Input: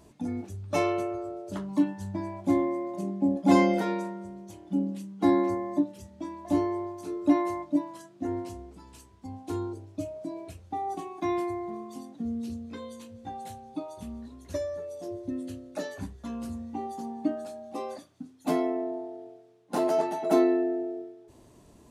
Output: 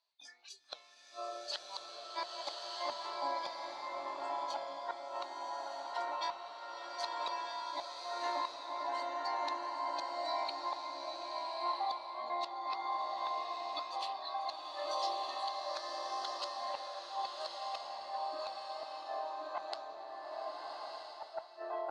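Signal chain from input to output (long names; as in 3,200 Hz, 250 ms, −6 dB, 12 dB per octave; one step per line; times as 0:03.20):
in parallel at −1.5 dB: downward compressor 8 to 1, threshold −37 dBFS, peak gain reduction 21 dB
on the sum: low-pass with resonance 4,300 Hz, resonance Q 8.1
noise gate −37 dBFS, range −10 dB
on a send: delay with a low-pass on its return 1,076 ms, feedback 76%, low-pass 1,300 Hz, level −5 dB
on the sum: noise reduction from a noise print of the clip's start 23 dB
high-pass filter 800 Hz 24 dB per octave
gate with flip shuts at −30 dBFS, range −37 dB
flanger 1.8 Hz, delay 3.1 ms, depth 5.8 ms, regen −78%
slow-attack reverb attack 1,260 ms, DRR −2 dB
level +7.5 dB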